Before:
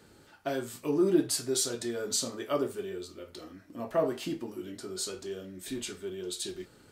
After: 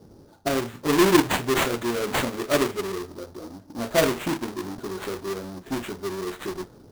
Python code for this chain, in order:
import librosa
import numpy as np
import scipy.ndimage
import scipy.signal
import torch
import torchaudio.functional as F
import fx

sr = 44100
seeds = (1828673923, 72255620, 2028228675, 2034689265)

y = fx.halfwave_hold(x, sr)
y = fx.env_lowpass(y, sr, base_hz=640.0, full_db=-23.0)
y = fx.sample_hold(y, sr, seeds[0], rate_hz=5300.0, jitter_pct=20)
y = y * librosa.db_to_amplitude(4.0)